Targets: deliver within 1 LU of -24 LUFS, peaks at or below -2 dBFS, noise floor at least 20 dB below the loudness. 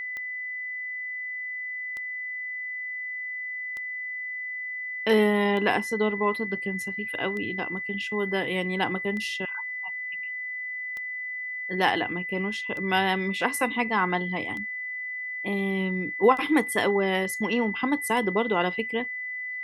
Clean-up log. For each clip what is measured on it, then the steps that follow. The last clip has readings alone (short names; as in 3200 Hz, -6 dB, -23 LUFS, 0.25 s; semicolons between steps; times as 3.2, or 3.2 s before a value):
clicks 11; steady tone 2000 Hz; tone level -31 dBFS; loudness -27.5 LUFS; peak -7.0 dBFS; loudness target -24.0 LUFS
-> de-click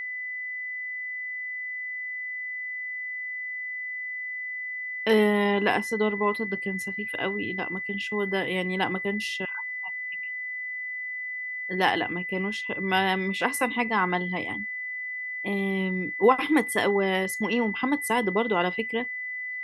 clicks 0; steady tone 2000 Hz; tone level -31 dBFS
-> notch 2000 Hz, Q 30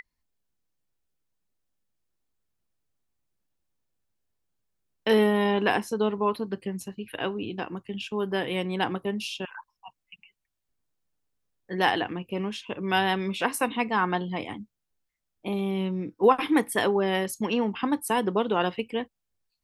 steady tone none; loudness -27.0 LUFS; peak -7.0 dBFS; loudness target -24.0 LUFS
-> gain +3 dB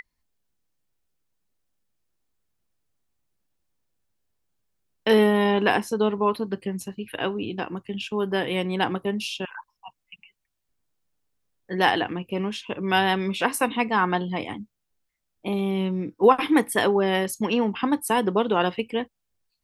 loudness -24.0 LUFS; peak -4.0 dBFS; noise floor -79 dBFS